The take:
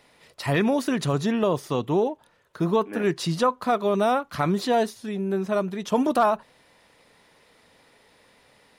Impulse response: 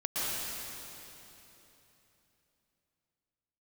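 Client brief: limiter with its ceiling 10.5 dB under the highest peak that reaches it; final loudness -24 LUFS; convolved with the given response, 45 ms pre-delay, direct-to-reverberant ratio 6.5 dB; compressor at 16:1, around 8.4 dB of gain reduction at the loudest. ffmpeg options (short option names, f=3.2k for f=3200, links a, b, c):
-filter_complex "[0:a]acompressor=threshold=-25dB:ratio=16,alimiter=limit=-24dB:level=0:latency=1,asplit=2[a][b];[1:a]atrim=start_sample=2205,adelay=45[c];[b][c]afir=irnorm=-1:irlink=0,volume=-14.5dB[d];[a][d]amix=inputs=2:normalize=0,volume=8.5dB"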